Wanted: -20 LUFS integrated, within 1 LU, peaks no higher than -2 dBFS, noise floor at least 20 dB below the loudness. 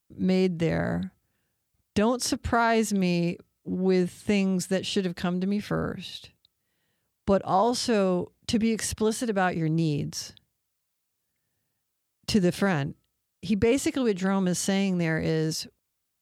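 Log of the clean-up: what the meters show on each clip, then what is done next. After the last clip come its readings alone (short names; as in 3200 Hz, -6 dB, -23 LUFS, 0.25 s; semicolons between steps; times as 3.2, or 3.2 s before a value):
loudness -26.5 LUFS; peak -12.5 dBFS; loudness target -20.0 LUFS
-> gain +6.5 dB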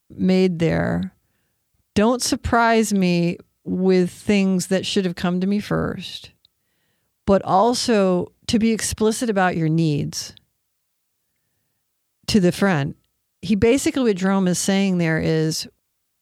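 loudness -20.0 LUFS; peak -6.0 dBFS; noise floor -73 dBFS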